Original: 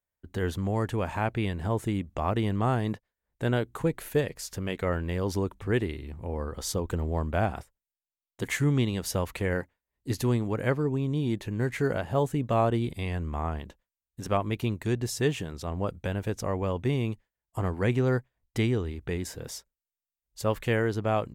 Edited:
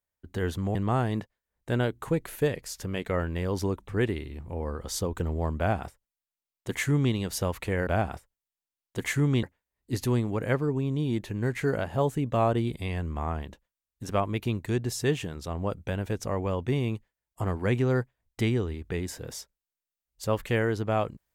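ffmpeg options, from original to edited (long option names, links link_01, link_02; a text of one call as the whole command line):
ffmpeg -i in.wav -filter_complex "[0:a]asplit=4[link_01][link_02][link_03][link_04];[link_01]atrim=end=0.752[link_05];[link_02]atrim=start=2.478:end=9.602[link_06];[link_03]atrim=start=7.308:end=8.872[link_07];[link_04]atrim=start=9.598[link_08];[link_05][link_06]acrossfade=duration=0.004:curve1=hsin:curve2=hsin[link_09];[link_09][link_07]acrossfade=duration=0.004:curve1=hsin:curve2=hsin[link_10];[link_10][link_08]acrossfade=duration=0.004:curve1=hsin:curve2=hsin" out.wav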